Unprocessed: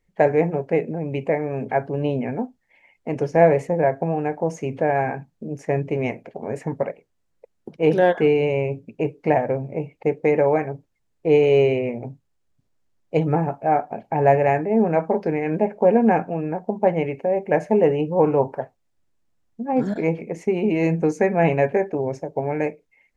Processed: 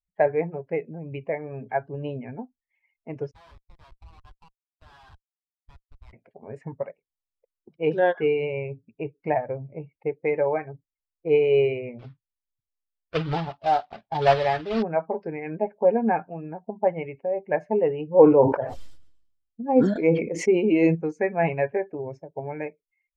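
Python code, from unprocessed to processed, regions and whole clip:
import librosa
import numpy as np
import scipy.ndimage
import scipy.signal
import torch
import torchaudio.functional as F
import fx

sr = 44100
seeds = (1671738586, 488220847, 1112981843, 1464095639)

y = fx.chain(x, sr, fx.ladder_highpass(hz=990.0, resonance_pct=75),
    fx.schmitt(flips_db=-39.0),
    fx.doppler_dist(depth_ms=0.2), at=(3.31, 6.13))
y = fx.chain(y, sr, fx.block_float(bits=3),
    fx.lowpass(hz=4200.0, slope=12), at=(11.99, 14.83))
y = fx.chain(y, sr, fx.high_shelf(hz=3500.0, db=8.5),
    fx.small_body(hz=(290.0, 500.0, 3100.0), ring_ms=20, db=7),
    fx.sustainer(db_per_s=50.0), at=(18.14, 20.95))
y = fx.bin_expand(y, sr, power=1.5)
y = scipy.signal.sosfilt(scipy.signal.bessel(2, 3800.0, 'lowpass', norm='mag', fs=sr, output='sos'), y)
y = fx.dynamic_eq(y, sr, hz=200.0, q=1.1, threshold_db=-35.0, ratio=4.0, max_db=-5)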